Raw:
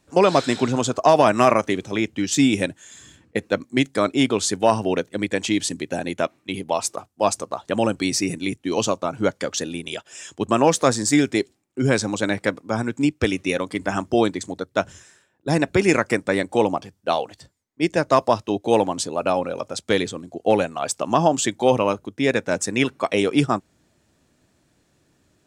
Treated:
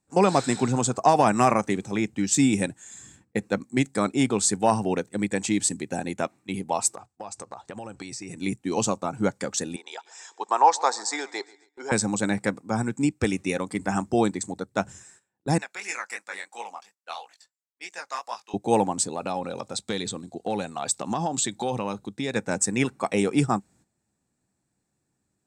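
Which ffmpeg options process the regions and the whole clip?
-filter_complex "[0:a]asettb=1/sr,asplit=3[a][b][c];[a]atrim=end=6.954[d];[b]atrim=start=6.95:end=8.38,asetpts=PTS-STARTPTS,afade=t=in:d=0.004:c=qsin,afade=t=out:st=1.426:d=0.004:c=qsin,equalizer=f=210:t=o:w=1.2:g=-7.5,acompressor=threshold=-29dB:ratio=10:attack=3.2:release=140:knee=1:detection=peak,lowpass=6.8k[e];[c]atrim=start=8.376[f];[d][e]acrossfade=d=0.004:c1=hsin:c2=qsin[g];[g][f]acrossfade=d=0.004:c1=qsin:c2=hsin,asettb=1/sr,asplit=3[h][i][j];[h]atrim=end=9.764[k];[i]atrim=start=9.76:end=11.92,asetpts=PTS-STARTPTS,afade=t=in:d=0.004:c=qsin,afade=t=out:st=2.156:d=0.004:c=qsin,highpass=f=480:w=0.5412,highpass=f=480:w=1.3066,equalizer=f=580:t=q:w=4:g=-6,equalizer=f=910:t=q:w=4:g=10,equalizer=f=2.7k:t=q:w=4:g=-8,equalizer=f=4.1k:t=q:w=4:g=4,lowpass=f=6k:w=0.5412,lowpass=f=6k:w=1.3066,aecho=1:1:137|274|411|548:0.075|0.042|0.0235|0.0132,atrim=end_sample=95256[l];[j]atrim=start=11.916[m];[k][l]acrossfade=d=0.004:c1=hsin:c2=qsin[n];[n][m]acrossfade=d=0.004:c1=qsin:c2=hsin,asettb=1/sr,asplit=3[o][p][q];[o]atrim=end=15.584[r];[p]atrim=start=15.58:end=18.54,asetpts=PTS-STARTPTS,afade=t=in:d=0.004:c=qsin,afade=t=out:st=2.956:d=0.004:c=qsin,highpass=1.3k,equalizer=f=8.5k:w=8:g=-14,flanger=delay=17:depth=6.6:speed=2.9[s];[q]atrim=start=18.536[t];[r][s]acrossfade=d=0.004:c1=hsin:c2=qsin[u];[u][t]acrossfade=d=0.004:c1=qsin:c2=hsin,asettb=1/sr,asplit=3[v][w][x];[v]atrim=end=19.084[y];[w]atrim=start=19.08:end=22.36,asetpts=PTS-STARTPTS,afade=t=in:d=0.004:c=qsin,afade=t=out:st=3.276:d=0.004:c=qsin,equalizer=f=3.8k:t=o:w=0.46:g=12,acompressor=threshold=-22dB:ratio=2.5:attack=3.2:release=140:knee=1:detection=peak[z];[x]atrim=start=22.356[aa];[y][z]acrossfade=d=0.004:c1=hsin:c2=qsin[ab];[ab][aa]acrossfade=d=0.004:c1=qsin:c2=hsin,equalizer=f=125:t=o:w=0.33:g=5,equalizer=f=200:t=o:w=0.33:g=7,equalizer=f=800:t=o:w=0.33:g=6,equalizer=f=3.15k:t=o:w=0.33:g=-7,equalizer=f=8k:t=o:w=0.33:g=11,agate=range=-12dB:threshold=-50dB:ratio=16:detection=peak,equalizer=f=620:t=o:w=0.21:g=-5.5,volume=-4.5dB"

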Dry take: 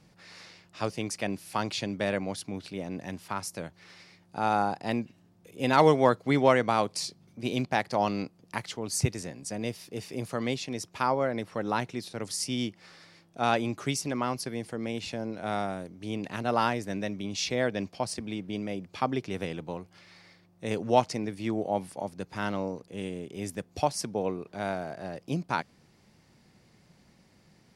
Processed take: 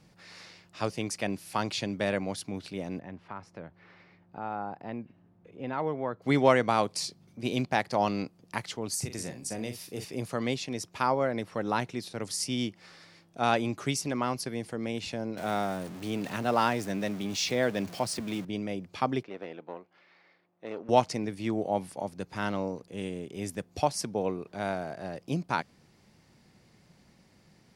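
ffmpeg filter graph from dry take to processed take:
-filter_complex "[0:a]asettb=1/sr,asplit=3[a][b][c];[a]atrim=end=2.994[d];[b]atrim=start=2.99:end=6.22,asetpts=PTS-STARTPTS,afade=t=in:d=0.004:c=qsin,afade=t=out:st=3.226:d=0.004:c=qsin,lowpass=1.9k,acompressor=threshold=-46dB:ratio=1.5:attack=3.2:release=140:knee=1:detection=peak[e];[c]atrim=start=6.216[f];[d][e]acrossfade=d=0.004:c1=hsin:c2=qsin[g];[g][f]acrossfade=d=0.004:c1=qsin:c2=hsin,asettb=1/sr,asplit=3[h][i][j];[h]atrim=end=8.944[k];[i]atrim=start=8.94:end=10.05,asetpts=PTS-STARTPTS,afade=t=in:d=0.004:c=qsin,afade=t=out:st=1.106:d=0.004:c=qsin,highshelf=f=9.8k:g=9.5,acompressor=threshold=-30dB:ratio=4:attack=3.2:release=140:knee=1:detection=peak,asplit=2[l][m];[m]adelay=41,volume=-9dB[n];[l][n]amix=inputs=2:normalize=0,atrim=end_sample=48951[o];[j]atrim=start=10.046[p];[k][o]acrossfade=d=0.004:c1=hsin:c2=qsin[q];[q][p]acrossfade=d=0.004:c1=qsin:c2=hsin,asettb=1/sr,asplit=3[r][s][t];[r]atrim=end=15.374[u];[s]atrim=start=15.37:end=18.45,asetpts=PTS-STARTPTS,afade=t=in:d=0.004:c=qsin,afade=t=out:st=3.076:d=0.004:c=qsin,aeval=exprs='val(0)+0.5*0.0106*sgn(val(0))':c=same,highpass=100[v];[t]atrim=start=18.446[w];[u][v]acrossfade=d=0.004:c1=hsin:c2=qsin[x];[x][w]acrossfade=d=0.004:c1=qsin:c2=hsin,asettb=1/sr,asplit=3[y][z][aa];[y]atrim=end=19.234[ab];[z]atrim=start=19.23:end=20.89,asetpts=PTS-STARTPTS,afade=t=in:d=0.004:c=qsin,afade=t=out:st=1.656:d=0.004:c=qsin,aeval=exprs='(tanh(20*val(0)+0.7)-tanh(0.7))/20':c=same,highpass=330,lowpass=2.6k[ac];[aa]atrim=start=20.886[ad];[ab][ac]acrossfade=d=0.004:c1=hsin:c2=qsin[ae];[ae][ad]acrossfade=d=0.004:c1=qsin:c2=hsin"

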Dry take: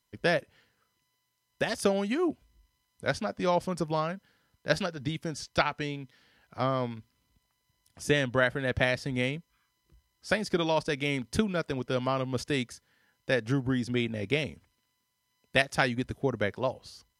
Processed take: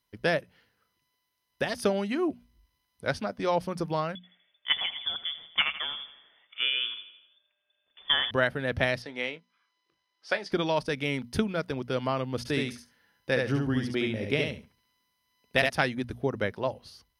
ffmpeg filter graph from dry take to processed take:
-filter_complex "[0:a]asettb=1/sr,asplit=3[a][b][c];[a]atrim=end=4.154[d];[b]atrim=start=4.15:end=8.31,asetpts=PTS-STARTPTS,afade=t=in:d=0.004:c=qsin,afade=t=out:st=4.156:d=0.004:c=qsin,lowpass=f=3.1k:t=q:w=0.5098,lowpass=f=3.1k:t=q:w=0.6013,lowpass=f=3.1k:t=q:w=0.9,lowpass=f=3.1k:t=q:w=2.563,afreqshift=-3600,aecho=1:1:82|164|246|328|410|492:0.211|0.116|0.0639|0.0352|0.0193|0.0106,atrim=end_sample=183456[e];[c]atrim=start=8.306[f];[d][e]acrossfade=d=0.004:c1=hsin:c2=qsin[g];[g][f]acrossfade=d=0.004:c1=qsin:c2=hsin,asettb=1/sr,asplit=3[h][i][j];[h]atrim=end=9.024[k];[i]atrim=start=9.02:end=10.52,asetpts=PTS-STARTPTS,afade=t=in:d=0.004:c=qsin,afade=t=out:st=1.496:d=0.004:c=qsin,highpass=430,lowpass=5.6k,asplit=2[l][m];[m]adelay=25,volume=-13dB[n];[l][n]amix=inputs=2:normalize=0,atrim=end_sample=66150[o];[j]atrim=start=10.516[p];[k][o]acrossfade=d=0.004:c1=hsin:c2=qsin[q];[q][p]acrossfade=d=0.004:c1=qsin:c2=hsin,asettb=1/sr,asplit=3[r][s][t];[r]atrim=end=12.384[u];[s]atrim=start=12.38:end=15.7,asetpts=PTS-STARTPTS,afade=t=in:d=0.004:c=qsin,afade=t=out:st=3.316:d=0.004:c=qsin,asoftclip=type=hard:threshold=-10.5dB,aecho=1:1:70|140|210:0.668|0.114|0.0193,atrim=end_sample=146412[v];[t]atrim=start=15.696[w];[u][v]acrossfade=d=0.004:c1=hsin:c2=qsin[x];[x][w]acrossfade=d=0.004:c1=qsin:c2=hsin,equalizer=f=7.4k:w=3.8:g=-13,bandreject=f=60:t=h:w=6,bandreject=f=120:t=h:w=6,bandreject=f=180:t=h:w=6,bandreject=f=240:t=h:w=6"

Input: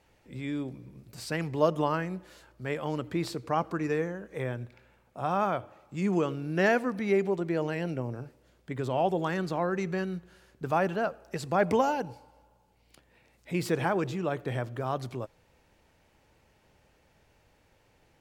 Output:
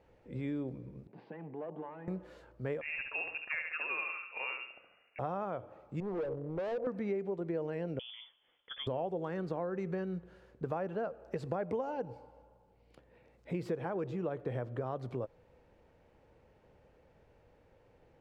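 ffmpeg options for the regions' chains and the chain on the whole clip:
-filter_complex "[0:a]asettb=1/sr,asplit=3[a][b][c];[a]atrim=end=1.074[d];[b]atrim=start=1.07:end=2.08,asetpts=PTS-STARTPTS,afade=t=in:d=0.004:c=qsin,afade=t=out:st=1.006:d=0.004:c=qsin,acompressor=threshold=-39dB:ratio=2.5:attack=3.2:release=140:knee=1:detection=peak,aeval=exprs='(tanh(70.8*val(0)+0.65)-tanh(0.65))/70.8':c=same,highpass=f=170:w=0.5412,highpass=f=170:w=1.3066,equalizer=f=180:t=q:w=4:g=4,equalizer=f=360:t=q:w=4:g=4,equalizer=f=530:t=q:w=4:g=-6,equalizer=f=830:t=q:w=4:g=8,equalizer=f=1.3k:t=q:w=4:g=-8,equalizer=f=2.2k:t=q:w=4:g=-3,lowpass=f=2.7k:w=0.5412,lowpass=f=2.7k:w=1.3066[e];[c]atrim=start=2.076[f];[d][e]acrossfade=d=0.004:c1=hsin:c2=qsin[g];[g][f]acrossfade=d=0.004:c1=qsin:c2=hsin,asettb=1/sr,asplit=3[h][i][j];[h]atrim=end=2.814[k];[i]atrim=start=2.81:end=5.19,asetpts=PTS-STARTPTS,afade=t=in:d=0.004:c=qsin,afade=t=out:st=2.376:d=0.004:c=qsin,aecho=1:1:70|140|210|280|350:0.501|0.2|0.0802|0.0321|0.0128,atrim=end_sample=104958,lowpass=f=2.5k:t=q:w=0.5098,lowpass=f=2.5k:t=q:w=0.6013,lowpass=f=2.5k:t=q:w=0.9,lowpass=f=2.5k:t=q:w=2.563,afreqshift=-2900[l];[j]atrim=start=5.186[m];[k][l]acrossfade=d=0.004:c1=hsin:c2=qsin[n];[n][m]acrossfade=d=0.004:c1=qsin:c2=hsin,asettb=1/sr,asplit=3[o][p][q];[o]atrim=end=6.004[r];[p]atrim=start=6:end=6.87,asetpts=PTS-STARTPTS,afade=t=in:d=0.004:c=qsin,afade=t=out:st=0.866:d=0.004:c=qsin,lowpass=f=550:t=q:w=2.6,equalizer=f=250:t=o:w=1.8:g=-11,volume=34dB,asoftclip=hard,volume=-34dB[s];[q]atrim=start=6.866[t];[r][s]acrossfade=d=0.004:c1=hsin:c2=qsin[u];[u][t]acrossfade=d=0.004:c1=qsin:c2=hsin,asettb=1/sr,asplit=3[v][w][x];[v]atrim=end=7.994[y];[w]atrim=start=7.99:end=8.87,asetpts=PTS-STARTPTS,afade=t=in:d=0.004:c=qsin,afade=t=out:st=0.876:d=0.004:c=qsin,highpass=170,lowpass=f=3.1k:t=q:w=0.5098,lowpass=f=3.1k:t=q:w=0.6013,lowpass=f=3.1k:t=q:w=0.9,lowpass=f=3.1k:t=q:w=2.563,afreqshift=-3600[z];[x]atrim=start=8.866[aa];[y][z]acrossfade=d=0.004:c1=hsin:c2=qsin[ab];[ab][aa]acrossfade=d=0.004:c1=qsin:c2=hsin,lowpass=f=1.2k:p=1,equalizer=f=490:w=3.2:g=7,acompressor=threshold=-33dB:ratio=6"

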